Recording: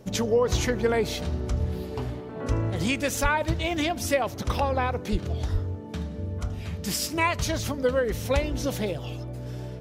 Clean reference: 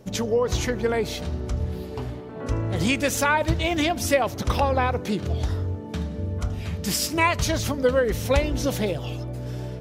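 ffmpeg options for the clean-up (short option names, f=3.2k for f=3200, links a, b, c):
-filter_complex "[0:a]asplit=3[a][b][c];[a]afade=t=out:st=3.22:d=0.02[d];[b]highpass=f=140:w=0.5412,highpass=f=140:w=1.3066,afade=t=in:st=3.22:d=0.02,afade=t=out:st=3.34:d=0.02[e];[c]afade=t=in:st=3.34:d=0.02[f];[d][e][f]amix=inputs=3:normalize=0,asplit=3[g][h][i];[g]afade=t=out:st=5.11:d=0.02[j];[h]highpass=f=140:w=0.5412,highpass=f=140:w=1.3066,afade=t=in:st=5.11:d=0.02,afade=t=out:st=5.23:d=0.02[k];[i]afade=t=in:st=5.23:d=0.02[l];[j][k][l]amix=inputs=3:normalize=0,asplit=3[m][n][o];[m]afade=t=out:st=5.52:d=0.02[p];[n]highpass=f=140:w=0.5412,highpass=f=140:w=1.3066,afade=t=in:st=5.52:d=0.02,afade=t=out:st=5.64:d=0.02[q];[o]afade=t=in:st=5.64:d=0.02[r];[p][q][r]amix=inputs=3:normalize=0,asetnsamples=n=441:p=0,asendcmd='2.7 volume volume 3.5dB',volume=0dB"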